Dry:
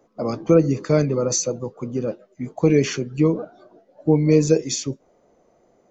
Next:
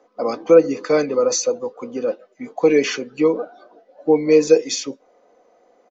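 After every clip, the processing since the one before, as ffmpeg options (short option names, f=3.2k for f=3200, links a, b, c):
-filter_complex "[0:a]acrossover=split=330 6300:gain=0.1 1 0.0891[a][b][c];[a][b][c]amix=inputs=3:normalize=0,aecho=1:1:4:0.44,volume=4.5dB"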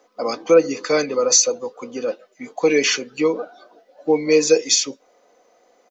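-af "highshelf=f=5.6k:g=-8.5,crystalizer=i=7:c=0,volume=-3dB"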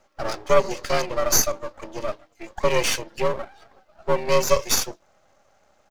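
-af "bandreject=f=113.8:t=h:w=4,bandreject=f=227.6:t=h:w=4,afreqshift=87,aeval=exprs='max(val(0),0)':c=same"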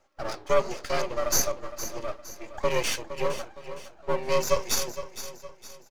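-af "flanger=delay=2.3:depth=6.8:regen=-81:speed=0.95:shape=sinusoidal,aecho=1:1:463|926|1389|1852:0.251|0.103|0.0422|0.0173,volume=-1dB"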